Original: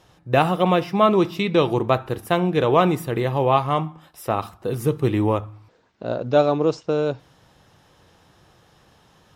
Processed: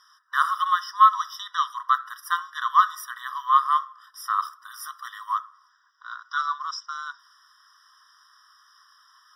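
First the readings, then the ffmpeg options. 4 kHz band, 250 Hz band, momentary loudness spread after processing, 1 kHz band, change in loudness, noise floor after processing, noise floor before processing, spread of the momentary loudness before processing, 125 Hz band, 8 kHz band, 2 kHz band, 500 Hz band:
−3.0 dB, below −40 dB, 19 LU, +2.0 dB, −3.0 dB, −62 dBFS, −57 dBFS, 11 LU, below −40 dB, +1.0 dB, +0.5 dB, below −40 dB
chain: -af "superequalizer=10b=1.58:13b=0.562:14b=2.24:15b=0.355,afftfilt=real='re*eq(mod(floor(b*sr/1024/980),2),1)':imag='im*eq(mod(floor(b*sr/1024/980),2),1)':win_size=1024:overlap=0.75,volume=2dB"

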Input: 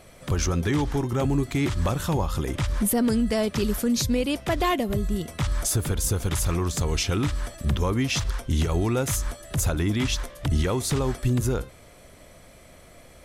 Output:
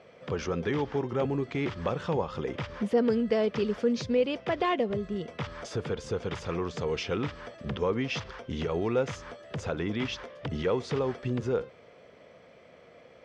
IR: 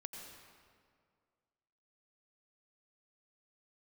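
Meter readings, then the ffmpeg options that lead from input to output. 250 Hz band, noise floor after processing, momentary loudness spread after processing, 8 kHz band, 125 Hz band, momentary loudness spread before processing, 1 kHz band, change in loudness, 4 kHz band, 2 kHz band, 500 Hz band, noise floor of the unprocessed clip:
−6.0 dB, −55 dBFS, 9 LU, −20.5 dB, −10.5 dB, 5 LU, −3.5 dB, −5.5 dB, −8.0 dB, −4.0 dB, +0.5 dB, −50 dBFS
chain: -af "highpass=160,equalizer=frequency=300:width_type=q:width=4:gain=-4,equalizer=frequency=470:width_type=q:width=4:gain=9,equalizer=frequency=4000:width_type=q:width=4:gain=-7,lowpass=frequency=4500:width=0.5412,lowpass=frequency=4500:width=1.3066,volume=-4dB"

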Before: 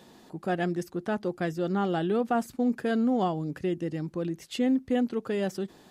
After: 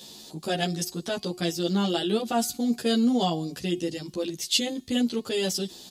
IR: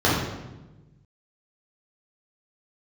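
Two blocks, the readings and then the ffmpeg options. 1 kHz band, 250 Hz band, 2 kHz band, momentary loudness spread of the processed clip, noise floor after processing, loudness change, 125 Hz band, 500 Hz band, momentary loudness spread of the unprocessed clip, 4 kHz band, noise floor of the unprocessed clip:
−0.5 dB, +1.0 dB, +1.5 dB, 8 LU, −48 dBFS, +2.0 dB, +1.0 dB, +0.5 dB, 7 LU, +15.0 dB, −55 dBFS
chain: -filter_complex "[0:a]highshelf=frequency=2600:width_type=q:width=1.5:gain=14,bandreject=frequency=361.6:width_type=h:width=4,bandreject=frequency=723.2:width_type=h:width=4,bandreject=frequency=1084.8:width_type=h:width=4,bandreject=frequency=1446.4:width_type=h:width=4,bandreject=frequency=1808:width_type=h:width=4,bandreject=frequency=2169.6:width_type=h:width=4,bandreject=frequency=2531.2:width_type=h:width=4,bandreject=frequency=2892.8:width_type=h:width=4,bandreject=frequency=3254.4:width_type=h:width=4,bandreject=frequency=3616:width_type=h:width=4,bandreject=frequency=3977.6:width_type=h:width=4,bandreject=frequency=4339.2:width_type=h:width=4,bandreject=frequency=4700.8:width_type=h:width=4,bandreject=frequency=5062.4:width_type=h:width=4,bandreject=frequency=5424:width_type=h:width=4,bandreject=frequency=5785.6:width_type=h:width=4,bandreject=frequency=6147.2:width_type=h:width=4,bandreject=frequency=6508.8:width_type=h:width=4,bandreject=frequency=6870.4:width_type=h:width=4,bandreject=frequency=7232:width_type=h:width=4,bandreject=frequency=7593.6:width_type=h:width=4,bandreject=frequency=7955.2:width_type=h:width=4,bandreject=frequency=8316.8:width_type=h:width=4,bandreject=frequency=8678.4:width_type=h:width=4,bandreject=frequency=9040:width_type=h:width=4,bandreject=frequency=9401.6:width_type=h:width=4,bandreject=frequency=9763.2:width_type=h:width=4,bandreject=frequency=10124.8:width_type=h:width=4,bandreject=frequency=10486.4:width_type=h:width=4,bandreject=frequency=10848:width_type=h:width=4,bandreject=frequency=11209.6:width_type=h:width=4,bandreject=frequency=11571.2:width_type=h:width=4,bandreject=frequency=11932.8:width_type=h:width=4,bandreject=frequency=12294.4:width_type=h:width=4,bandreject=frequency=12656:width_type=h:width=4,bandreject=frequency=13017.6:width_type=h:width=4,bandreject=frequency=13379.2:width_type=h:width=4,bandreject=frequency=13740.8:width_type=h:width=4,bandreject=frequency=14102.4:width_type=h:width=4,asplit=2[link_01][link_02];[link_02]adelay=11.3,afreqshift=0.46[link_03];[link_01][link_03]amix=inputs=2:normalize=1,volume=4.5dB"

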